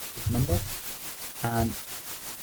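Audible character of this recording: a quantiser's noise floor 6-bit, dither triangular; tremolo triangle 5.8 Hz, depth 65%; Opus

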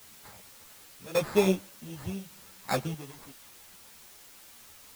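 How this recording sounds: aliases and images of a low sample rate 3000 Hz, jitter 0%; chopped level 0.87 Hz, depth 65%, duty 55%; a quantiser's noise floor 8-bit, dither triangular; a shimmering, thickened sound

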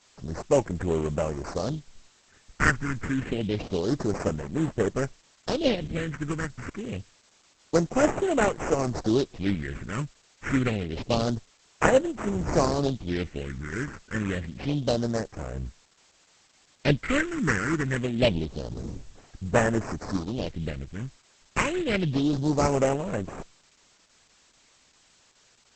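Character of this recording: aliases and images of a low sample rate 3500 Hz, jitter 20%; phasing stages 4, 0.27 Hz, lowest notch 630–4500 Hz; a quantiser's noise floor 10-bit, dither triangular; Opus

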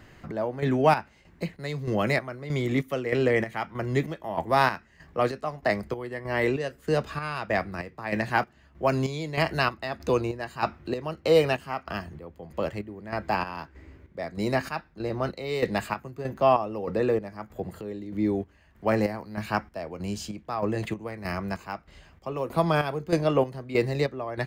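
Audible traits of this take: chopped level 1.6 Hz, depth 65%, duty 50%

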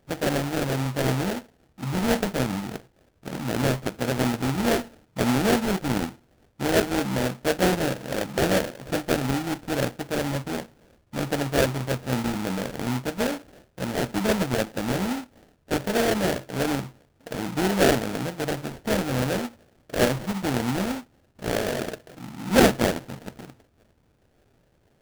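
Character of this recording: aliases and images of a low sample rate 1100 Hz, jitter 20%

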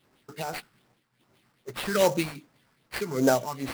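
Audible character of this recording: phasing stages 4, 2.5 Hz, lowest notch 500–3300 Hz; aliases and images of a low sample rate 6600 Hz, jitter 20%; tremolo triangle 1.6 Hz, depth 75%

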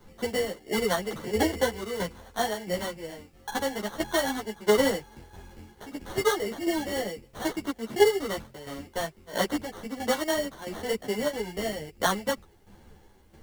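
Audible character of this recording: aliases and images of a low sample rate 2500 Hz, jitter 0%; tremolo saw down 1.5 Hz, depth 70%; a quantiser's noise floor 12-bit, dither triangular; a shimmering, thickened sound

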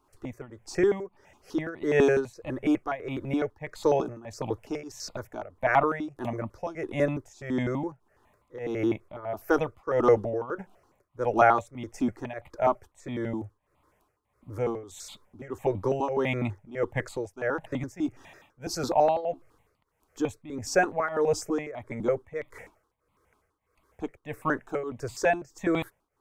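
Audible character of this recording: tremolo triangle 1.6 Hz, depth 90%; notches that jump at a steady rate 12 Hz 520–1600 Hz

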